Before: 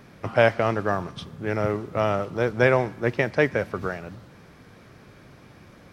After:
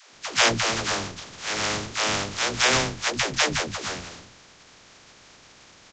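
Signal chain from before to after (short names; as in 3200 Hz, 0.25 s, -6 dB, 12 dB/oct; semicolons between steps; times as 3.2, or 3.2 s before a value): spectral contrast lowered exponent 0.19; downsampling 16000 Hz; dispersion lows, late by 0.143 s, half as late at 330 Hz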